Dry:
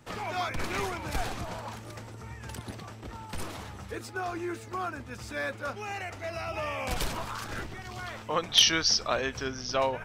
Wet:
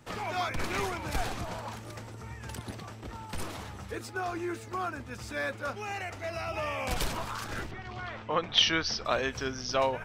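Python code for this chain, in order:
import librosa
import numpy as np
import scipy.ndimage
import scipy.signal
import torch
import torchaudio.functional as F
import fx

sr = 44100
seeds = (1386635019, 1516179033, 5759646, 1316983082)

y = fx.lowpass(x, sr, hz=3400.0, slope=12, at=(7.71, 9.05))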